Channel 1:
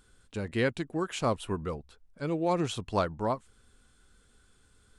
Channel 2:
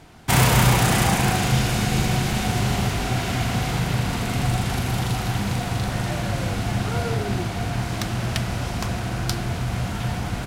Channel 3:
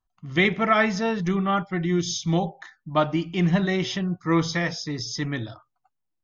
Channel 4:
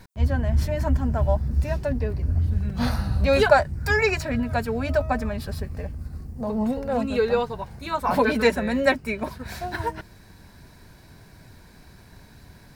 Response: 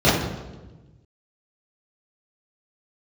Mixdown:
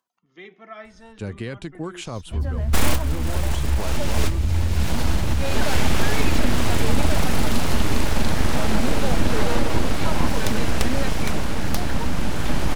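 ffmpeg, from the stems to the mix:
-filter_complex "[0:a]adelay=850,volume=-2dB[a];[1:a]acompressor=threshold=-20dB:ratio=6,aeval=exprs='abs(val(0))':c=same,adelay=2450,volume=2dB[b];[2:a]highpass=f=210:w=0.5412,highpass=f=210:w=1.3066,acompressor=mode=upward:threshold=-38dB:ratio=2.5,flanger=delay=1.9:depth=1.7:regen=46:speed=0.41:shape=triangular,volume=-19.5dB,asplit=2[c][d];[3:a]adelay=2150,volume=-5.5dB[e];[d]apad=whole_len=569441[f];[b][f]sidechaincompress=threshold=-58dB:ratio=4:attack=16:release=404[g];[a][c][e]amix=inputs=3:normalize=0,acrossover=split=150|3000[h][i][j];[i]acompressor=threshold=-29dB:ratio=6[k];[h][k][j]amix=inputs=3:normalize=0,alimiter=level_in=0.5dB:limit=-24dB:level=0:latency=1:release=36,volume=-0.5dB,volume=0dB[l];[g][l]amix=inputs=2:normalize=0,lowshelf=f=110:g=8.5,dynaudnorm=f=410:g=3:m=3.5dB"

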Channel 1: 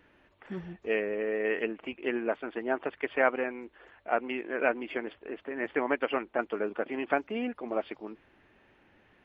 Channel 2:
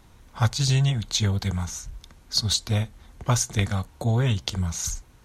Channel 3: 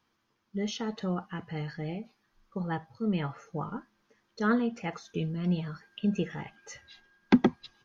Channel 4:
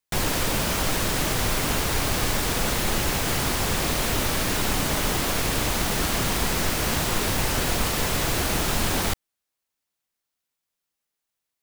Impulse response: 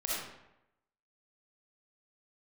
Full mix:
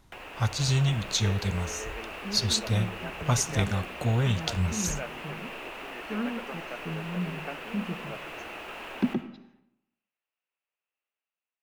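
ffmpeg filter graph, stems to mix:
-filter_complex "[0:a]adelay=350,volume=-15.5dB[a];[1:a]flanger=delay=7.1:depth=9.4:regen=87:speed=0.39:shape=triangular,volume=-1.5dB[b];[2:a]equalizer=f=150:t=o:w=2.4:g=9.5,adelay=1700,volume=-17dB,asplit=2[c][d];[d]volume=-16.5dB[e];[3:a]acrossover=split=320 2400:gain=0.0708 1 0.112[f][g][h];[f][g][h]amix=inputs=3:normalize=0,acrossover=split=170|7800[i][j][k];[i]acompressor=threshold=-52dB:ratio=4[l];[j]acompressor=threshold=-38dB:ratio=4[m];[k]acompressor=threshold=-58dB:ratio=4[n];[l][m][n]amix=inputs=3:normalize=0,equalizer=f=2.7k:t=o:w=0.39:g=13.5,volume=-9.5dB,asplit=2[o][p];[p]volume=-9.5dB[q];[4:a]atrim=start_sample=2205[r];[e][q]amix=inputs=2:normalize=0[s];[s][r]afir=irnorm=-1:irlink=0[t];[a][b][c][o][t]amix=inputs=5:normalize=0,dynaudnorm=f=160:g=7:m=3.5dB"

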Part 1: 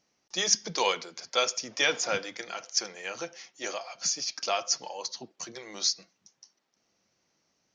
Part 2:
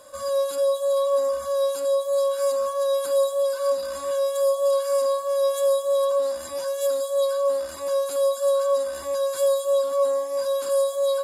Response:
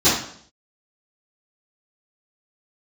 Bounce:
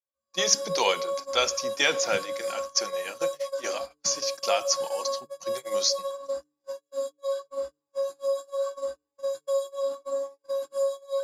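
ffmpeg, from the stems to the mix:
-filter_complex "[0:a]volume=2dB,asplit=2[a][b];[1:a]volume=-10dB,asplit=2[c][d];[d]volume=-17.5dB[e];[b]apad=whole_len=495626[f];[c][f]sidechaingate=range=-13dB:threshold=-53dB:ratio=16:detection=peak[g];[2:a]atrim=start_sample=2205[h];[e][h]afir=irnorm=-1:irlink=0[i];[a][g][i]amix=inputs=3:normalize=0,agate=range=-47dB:threshold=-31dB:ratio=16:detection=peak,bandreject=f=147.9:t=h:w=4,bandreject=f=295.8:t=h:w=4,bandreject=f=443.7:t=h:w=4"

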